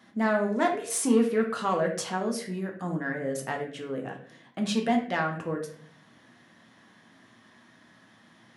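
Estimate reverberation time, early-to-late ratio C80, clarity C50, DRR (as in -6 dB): 0.55 s, 11.0 dB, 7.5 dB, 1.0 dB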